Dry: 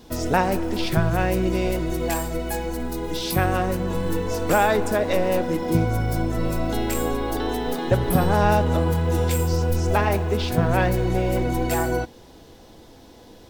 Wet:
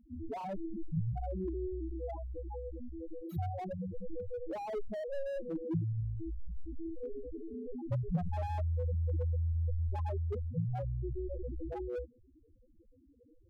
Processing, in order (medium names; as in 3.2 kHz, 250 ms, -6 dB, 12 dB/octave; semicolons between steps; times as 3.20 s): loudest bins only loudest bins 2; slew-rate limiter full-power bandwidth 21 Hz; trim -7.5 dB